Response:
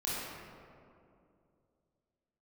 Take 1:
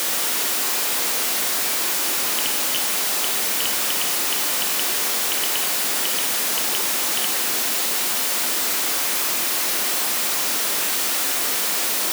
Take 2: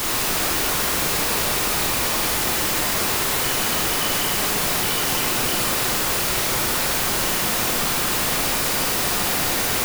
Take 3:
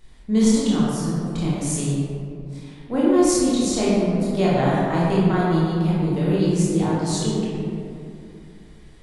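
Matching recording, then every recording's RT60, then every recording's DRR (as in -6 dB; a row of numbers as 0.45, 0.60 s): 3; 2.6, 2.5, 2.5 s; 2.5, -3.0, -8.0 dB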